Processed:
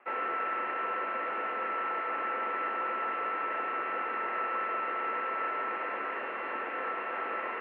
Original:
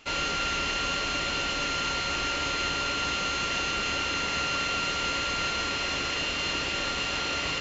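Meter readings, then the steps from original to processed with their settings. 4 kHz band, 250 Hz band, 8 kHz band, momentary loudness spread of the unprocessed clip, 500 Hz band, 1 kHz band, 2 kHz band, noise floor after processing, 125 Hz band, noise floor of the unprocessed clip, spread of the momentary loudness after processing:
−26.0 dB, −9.5 dB, can't be measured, 1 LU, −1.5 dB, 0.0 dB, −6.0 dB, −37 dBFS, below −25 dB, −31 dBFS, 2 LU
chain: single-sideband voice off tune −59 Hz 440–2,000 Hz
Opus 64 kbit/s 48,000 Hz

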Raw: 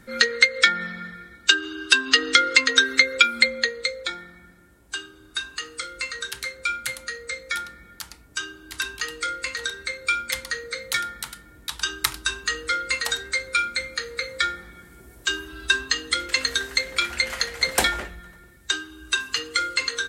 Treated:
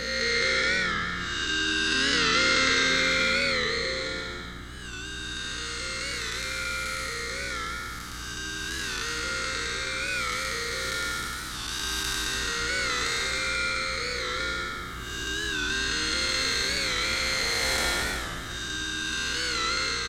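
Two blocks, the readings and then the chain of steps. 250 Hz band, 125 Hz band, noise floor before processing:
+2.0 dB, +8.0 dB, −51 dBFS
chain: spectrum smeared in time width 420 ms
in parallel at −2 dB: downward compressor, threshold −39 dBFS, peak gain reduction 15.5 dB
on the sum: dynamic equaliser 5,600 Hz, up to +5 dB, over −47 dBFS, Q 1.1
mains hum 60 Hz, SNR 14 dB
on a send: echo with shifted repeats 192 ms, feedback 52%, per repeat −84 Hz, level −7 dB
on the sum: wow of a warped record 45 rpm, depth 100 cents

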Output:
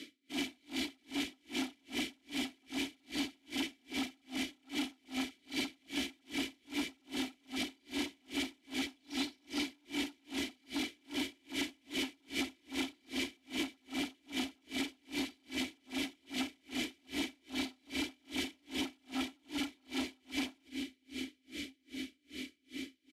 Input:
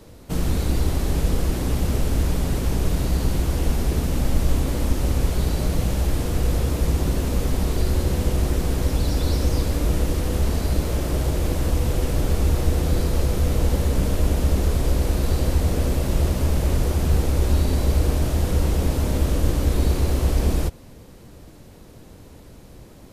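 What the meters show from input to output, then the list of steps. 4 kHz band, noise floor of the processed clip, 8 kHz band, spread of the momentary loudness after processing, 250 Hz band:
−3.5 dB, −73 dBFS, −13.5 dB, 4 LU, −11.0 dB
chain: in parallel at −2 dB: brickwall limiter −18.5 dBFS, peak gain reduction 11.5 dB
on the sum: formant filter i
high-shelf EQ 11,000 Hz −7.5 dB
on a send: feedback delay with all-pass diffusion 1,103 ms, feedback 67%, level −14.5 dB
on the sum: soft clipping −32.5 dBFS, distortion −12 dB
comb filter 3 ms, depth 54%
downward compressor 2.5 to 1, threshold −38 dBFS, peak gain reduction 5 dB
spectral tilt +4.5 dB per octave
tremolo with a sine in dB 2.5 Hz, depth 39 dB
level +12 dB

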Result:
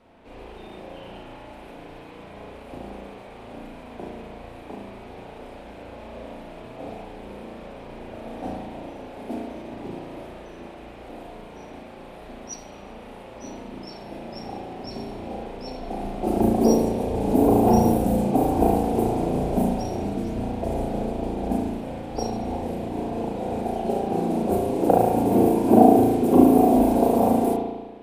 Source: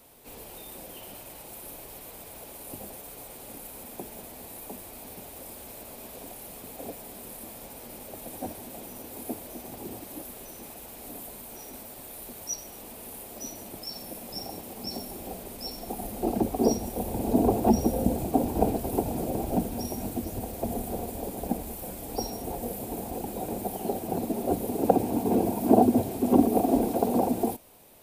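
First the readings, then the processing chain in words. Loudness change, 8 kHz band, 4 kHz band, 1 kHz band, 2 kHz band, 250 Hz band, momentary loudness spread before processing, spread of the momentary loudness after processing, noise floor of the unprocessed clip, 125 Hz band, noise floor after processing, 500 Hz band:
+7.5 dB, −4.5 dB, −1.0 dB, +7.0 dB, +5.5 dB, +6.0 dB, 17 LU, 23 LU, −45 dBFS, +6.0 dB, −42 dBFS, +6.5 dB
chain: low-pass that shuts in the quiet parts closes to 2,400 Hz, open at −21 dBFS
spring reverb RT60 1.2 s, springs 35 ms, chirp 50 ms, DRR −3.5 dB
level +1 dB

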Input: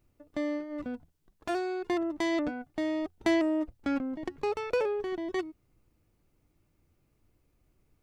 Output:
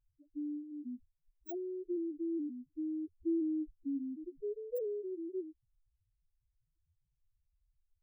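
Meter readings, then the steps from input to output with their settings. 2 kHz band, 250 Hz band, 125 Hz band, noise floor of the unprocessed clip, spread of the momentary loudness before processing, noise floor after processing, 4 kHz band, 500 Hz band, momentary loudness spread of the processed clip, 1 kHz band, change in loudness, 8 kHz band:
below −40 dB, −6.0 dB, below −15 dB, −72 dBFS, 11 LU, −83 dBFS, below −40 dB, −8.5 dB, 10 LU, below −25 dB, −7.5 dB, below −25 dB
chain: samples in bit-reversed order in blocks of 32 samples
spectral peaks only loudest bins 2
level −4 dB

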